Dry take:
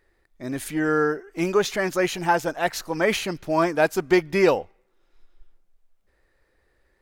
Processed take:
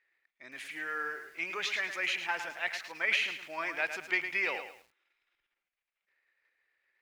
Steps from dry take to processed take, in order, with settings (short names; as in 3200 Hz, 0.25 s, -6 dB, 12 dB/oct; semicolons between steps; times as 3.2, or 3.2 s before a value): transient shaper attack +2 dB, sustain +7 dB; band-pass 2300 Hz, Q 2.7; lo-fi delay 0.108 s, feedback 35%, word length 9-bit, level -8.5 dB; gain -1.5 dB